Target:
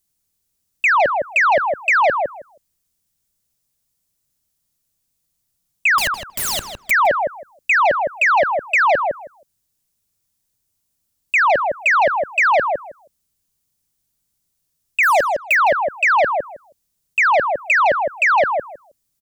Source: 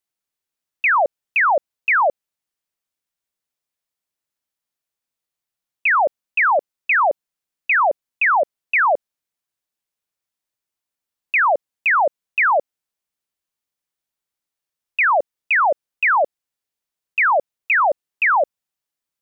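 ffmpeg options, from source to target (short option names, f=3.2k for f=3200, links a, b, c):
-filter_complex "[0:a]bass=f=250:g=8,treble=f=4k:g=13,asettb=1/sr,asplit=3[a][b][c];[a]atrim=end=5.984[d];[b]atrim=start=5.98:end=6.91,asetpts=PTS-STARTPTS,afade=t=in:d=0.004:c=qsin,afade=t=out:st=0.926:d=0.004:c=qsin,aeval=exprs='(mod(7.5*val(0)+1,2)-1)/7.5':c=same[e];[c]atrim=start=6.906[f];[d][e]acrossfade=d=0.004:c1=hsin:c2=qsin[g];[g][f]acrossfade=d=0.004:c1=qsin:c2=hsin,asettb=1/sr,asplit=3[h][i][j];[h]atrim=end=15.034[k];[i]atrim=start=15.03:end=15.55,asetpts=PTS-STARTPTS,afade=t=in:d=0.004:c=qsin,afade=t=out:st=0.516:d=0.004:c=qsin,acrusher=bits=3:mix=0:aa=0.5[l];[j]atrim=start=15.546[m];[k][l]acrossfade=d=0.004:c1=hsin:c2=qsin[n];[n][m]acrossfade=d=0.004:c1=qsin:c2=hsin,lowshelf=f=300:g=11,asplit=2[o][p];[p]adelay=159,lowpass=f=2.4k:p=1,volume=-6dB,asplit=2[q][r];[r]adelay=159,lowpass=f=2.4k:p=1,volume=0.16,asplit=2[s][t];[t]adelay=159,lowpass=f=2.4k:p=1,volume=0.16[u];[o][q][s][u]amix=inputs=4:normalize=0,acontrast=81,volume=-5.5dB"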